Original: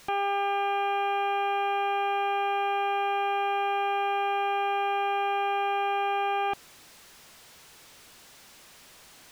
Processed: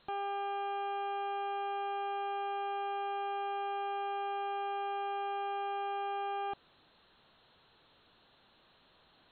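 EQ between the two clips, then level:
linear-phase brick-wall low-pass 4,300 Hz
parametric band 2,200 Hz −9.5 dB 0.56 octaves
−8.5 dB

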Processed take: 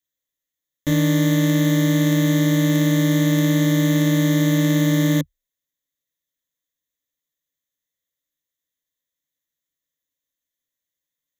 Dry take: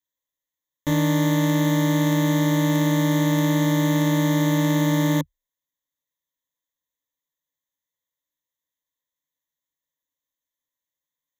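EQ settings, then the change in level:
parametric band 910 Hz −13.5 dB 0.56 octaves
+3.0 dB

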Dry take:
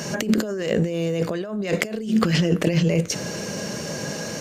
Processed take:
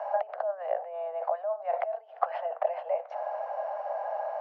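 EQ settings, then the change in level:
Butterworth high-pass 600 Hz 72 dB per octave
low-pass with resonance 770 Hz, resonance Q 4.9
high-frequency loss of the air 170 metres
−1.5 dB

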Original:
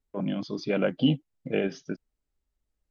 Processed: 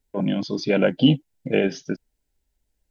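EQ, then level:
Butterworth band-reject 1,200 Hz, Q 4.4
high-shelf EQ 4,800 Hz +4.5 dB
+6.5 dB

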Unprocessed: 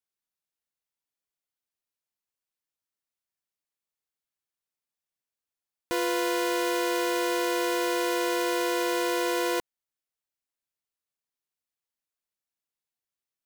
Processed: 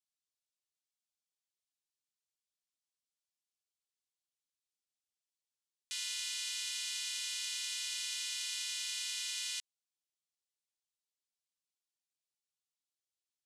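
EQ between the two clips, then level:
four-pole ladder high-pass 2,300 Hz, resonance 25%
low-pass filter 9,200 Hz 24 dB per octave
spectral tilt +3 dB per octave
−3.5 dB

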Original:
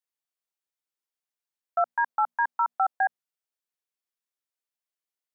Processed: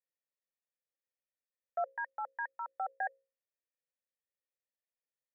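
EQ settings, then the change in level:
formant resonators in series e
mains-hum notches 60/120/180/240/300/360/420/480/540 Hz
+6.5 dB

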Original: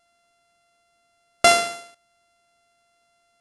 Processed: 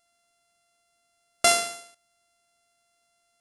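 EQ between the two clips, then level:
high-shelf EQ 5,400 Hz +11 dB
−7.0 dB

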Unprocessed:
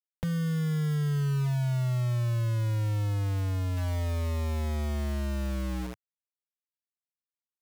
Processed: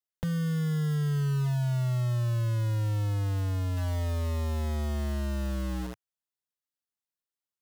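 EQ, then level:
notch filter 2,300 Hz, Q 8
0.0 dB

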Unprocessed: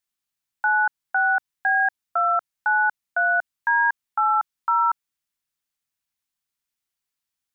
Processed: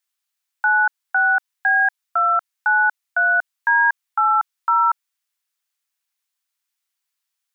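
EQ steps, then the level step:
high-pass filter 840 Hz 12 dB per octave
+4.5 dB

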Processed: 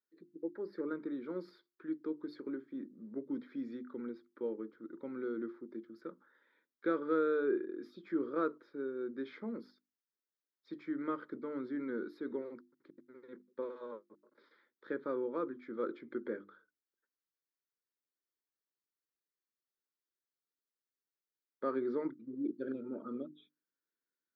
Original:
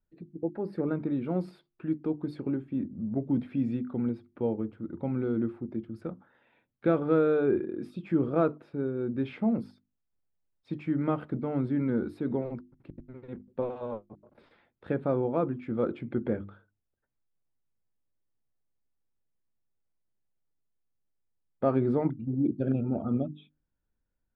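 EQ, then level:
four-pole ladder high-pass 280 Hz, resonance 25%
low-shelf EQ 440 Hz −4 dB
phaser with its sweep stopped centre 2,700 Hz, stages 6
+4.0 dB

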